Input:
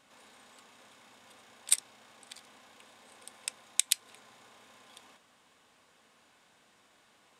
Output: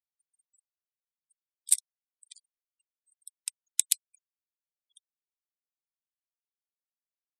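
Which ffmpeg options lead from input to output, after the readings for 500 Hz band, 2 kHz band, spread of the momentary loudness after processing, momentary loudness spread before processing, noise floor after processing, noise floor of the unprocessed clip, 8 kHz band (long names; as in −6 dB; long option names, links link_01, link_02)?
below −35 dB, −7.5 dB, 13 LU, 22 LU, below −85 dBFS, −66 dBFS, +2.5 dB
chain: -af "crystalizer=i=4.5:c=0,afftfilt=real='re*gte(hypot(re,im),0.0178)':imag='im*gte(hypot(re,im),0.0178)':win_size=1024:overlap=0.75,volume=-12.5dB"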